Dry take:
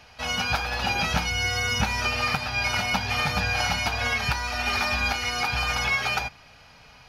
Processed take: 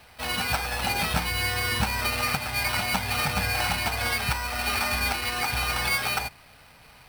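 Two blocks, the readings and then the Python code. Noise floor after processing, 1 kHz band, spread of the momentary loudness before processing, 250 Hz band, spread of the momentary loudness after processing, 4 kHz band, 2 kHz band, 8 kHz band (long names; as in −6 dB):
−52 dBFS, −1.0 dB, 3 LU, −0.5 dB, 3 LU, −1.5 dB, −1.5 dB, +2.0 dB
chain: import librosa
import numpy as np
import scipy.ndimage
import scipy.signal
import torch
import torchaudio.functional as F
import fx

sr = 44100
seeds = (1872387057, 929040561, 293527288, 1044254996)

y = fx.sample_hold(x, sr, seeds[0], rate_hz=6900.0, jitter_pct=0)
y = F.gain(torch.from_numpy(y), -1.0).numpy()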